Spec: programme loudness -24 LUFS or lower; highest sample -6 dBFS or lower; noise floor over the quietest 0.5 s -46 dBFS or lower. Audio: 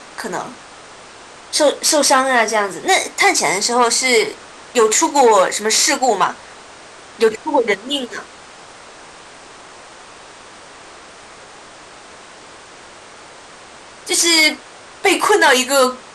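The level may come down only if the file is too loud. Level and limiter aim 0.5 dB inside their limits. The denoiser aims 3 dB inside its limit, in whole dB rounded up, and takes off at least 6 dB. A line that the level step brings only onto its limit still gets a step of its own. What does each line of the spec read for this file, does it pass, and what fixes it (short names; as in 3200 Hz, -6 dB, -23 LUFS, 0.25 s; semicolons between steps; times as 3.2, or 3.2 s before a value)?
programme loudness -14.5 LUFS: fail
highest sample -3.0 dBFS: fail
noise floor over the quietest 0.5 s -40 dBFS: fail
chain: gain -10 dB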